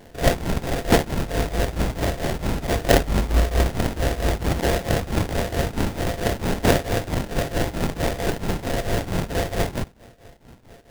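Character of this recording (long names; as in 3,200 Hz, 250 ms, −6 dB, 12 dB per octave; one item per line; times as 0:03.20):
a buzz of ramps at a fixed pitch in blocks of 64 samples
tremolo triangle 4.5 Hz, depth 90%
phaser sweep stages 6, 1.5 Hz, lowest notch 660–1,900 Hz
aliases and images of a low sample rate 1,200 Hz, jitter 20%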